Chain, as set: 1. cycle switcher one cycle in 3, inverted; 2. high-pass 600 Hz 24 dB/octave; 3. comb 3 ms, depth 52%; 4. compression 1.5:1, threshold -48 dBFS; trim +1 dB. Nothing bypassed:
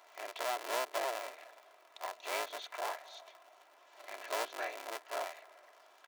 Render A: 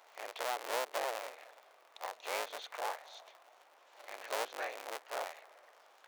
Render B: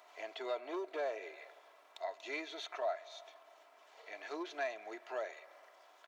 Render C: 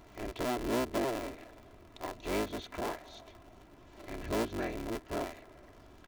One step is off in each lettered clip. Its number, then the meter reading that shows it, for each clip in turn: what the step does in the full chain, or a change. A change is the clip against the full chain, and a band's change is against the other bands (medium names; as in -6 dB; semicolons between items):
3, 250 Hz band -2.0 dB; 1, 250 Hz band +13.0 dB; 2, 250 Hz band +22.5 dB